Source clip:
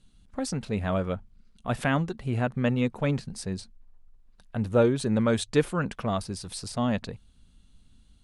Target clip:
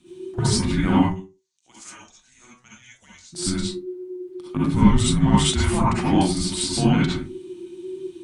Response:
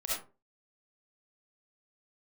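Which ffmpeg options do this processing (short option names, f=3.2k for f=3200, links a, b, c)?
-filter_complex "[0:a]asplit=3[a][b][c];[a]afade=t=out:st=1.01:d=0.02[d];[b]bandpass=f=6.9k:t=q:w=5.6:csg=0,afade=t=in:st=1.01:d=0.02,afade=t=out:st=3.32:d=0.02[e];[c]afade=t=in:st=3.32:d=0.02[f];[d][e][f]amix=inputs=3:normalize=0,asoftclip=type=tanh:threshold=-13dB,alimiter=limit=-21dB:level=0:latency=1[g];[1:a]atrim=start_sample=2205[h];[g][h]afir=irnorm=-1:irlink=0,afreqshift=-380,volume=9dB"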